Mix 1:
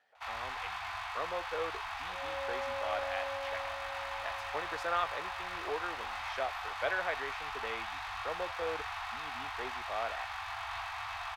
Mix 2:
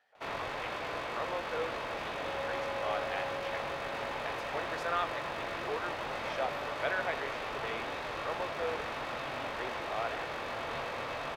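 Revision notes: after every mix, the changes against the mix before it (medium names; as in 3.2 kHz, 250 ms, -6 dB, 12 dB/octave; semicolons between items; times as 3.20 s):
first sound: remove Chebyshev band-stop 100–730 Hz, order 5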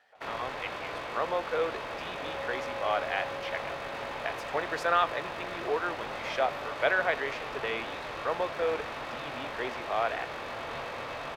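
speech +7.5 dB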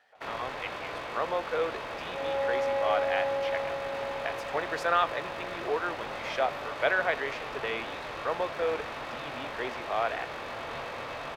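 second sound +10.5 dB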